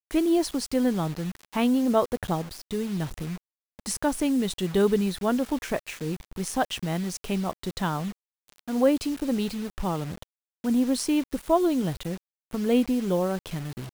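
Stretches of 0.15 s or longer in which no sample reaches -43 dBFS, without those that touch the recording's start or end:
3.38–3.79 s
8.12–8.48 s
10.23–10.64 s
12.18–12.51 s

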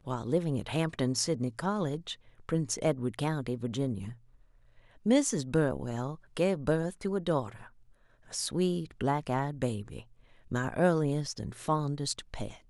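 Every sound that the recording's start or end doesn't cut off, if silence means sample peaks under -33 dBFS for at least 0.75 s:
5.06–7.46 s

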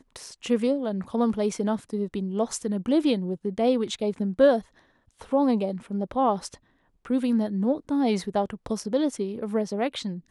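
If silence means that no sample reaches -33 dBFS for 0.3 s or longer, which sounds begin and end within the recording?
5.21–6.54 s

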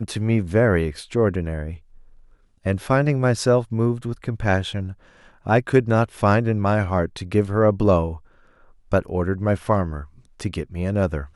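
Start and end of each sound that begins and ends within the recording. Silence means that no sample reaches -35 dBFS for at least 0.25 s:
2.65–4.93 s
5.46–8.18 s
8.92–10.05 s

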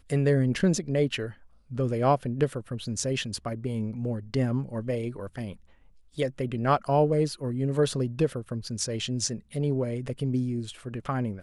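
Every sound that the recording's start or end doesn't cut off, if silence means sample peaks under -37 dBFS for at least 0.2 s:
1.71–5.53 s

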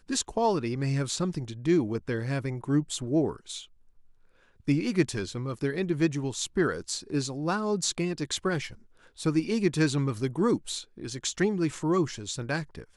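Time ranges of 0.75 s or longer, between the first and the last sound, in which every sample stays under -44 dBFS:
3.65–4.67 s

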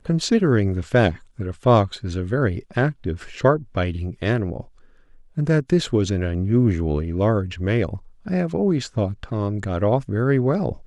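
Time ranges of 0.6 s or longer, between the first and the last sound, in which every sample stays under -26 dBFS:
4.61–5.38 s

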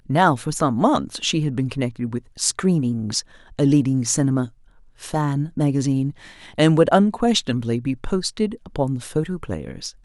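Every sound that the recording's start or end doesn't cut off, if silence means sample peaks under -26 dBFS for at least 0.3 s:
3.59–4.46 s
5.04–6.10 s

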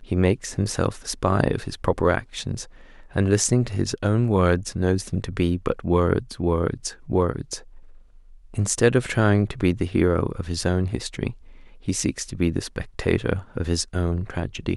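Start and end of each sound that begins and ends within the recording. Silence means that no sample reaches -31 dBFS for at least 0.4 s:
3.15–7.58 s
8.54–11.31 s

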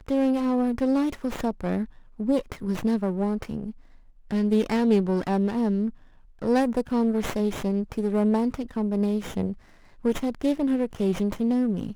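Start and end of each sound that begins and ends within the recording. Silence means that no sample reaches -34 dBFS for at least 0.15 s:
2.20–3.71 s
4.31–5.90 s
6.42–9.53 s

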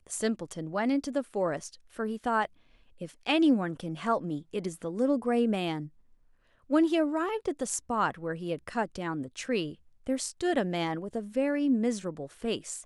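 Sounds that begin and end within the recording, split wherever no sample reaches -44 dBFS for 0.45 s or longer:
3.01–5.88 s

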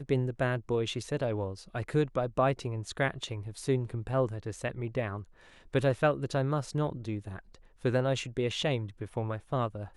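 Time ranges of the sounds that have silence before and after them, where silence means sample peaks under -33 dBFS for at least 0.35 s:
5.74–7.39 s

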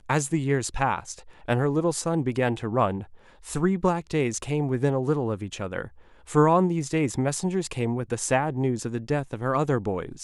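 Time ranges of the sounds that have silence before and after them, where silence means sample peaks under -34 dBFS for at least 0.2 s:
1.48–3.03 s
3.47–5.87 s

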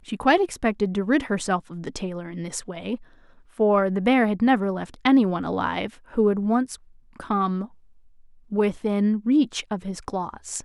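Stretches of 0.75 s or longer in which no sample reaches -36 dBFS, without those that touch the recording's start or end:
7.66–8.52 s

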